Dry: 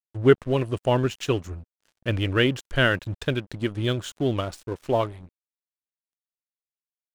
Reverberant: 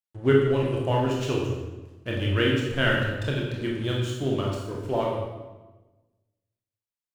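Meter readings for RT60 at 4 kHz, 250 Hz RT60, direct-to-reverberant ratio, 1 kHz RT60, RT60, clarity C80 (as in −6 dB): 0.90 s, 1.4 s, −2.5 dB, 1.1 s, 1.2 s, 4.0 dB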